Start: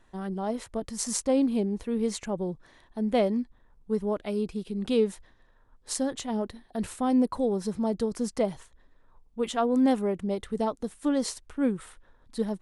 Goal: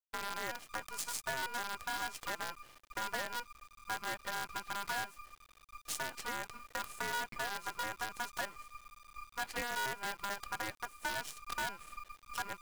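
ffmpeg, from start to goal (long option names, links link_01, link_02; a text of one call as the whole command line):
ffmpeg -i in.wav -af "agate=range=-9dB:threshold=-54dB:ratio=16:detection=peak,asubboost=boost=3:cutoff=51,acompressor=threshold=-38dB:ratio=5,aeval=exprs='val(0)*sin(2*PI*1200*n/s)':channel_layout=same,acrusher=bits=7:dc=4:mix=0:aa=0.000001,volume=3dB" out.wav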